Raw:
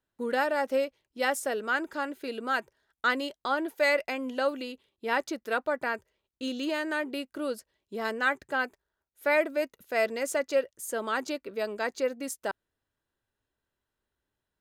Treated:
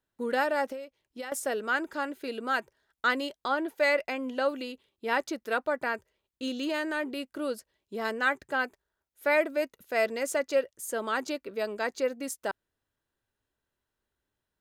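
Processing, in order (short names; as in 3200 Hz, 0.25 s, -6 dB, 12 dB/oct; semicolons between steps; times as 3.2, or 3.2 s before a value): 0.71–1.32 compressor 12:1, threshold -36 dBFS, peak gain reduction 14.5 dB; 3.48–4.5 high shelf 5600 Hz -5 dB; 6.65–7.24 transient shaper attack -6 dB, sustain +2 dB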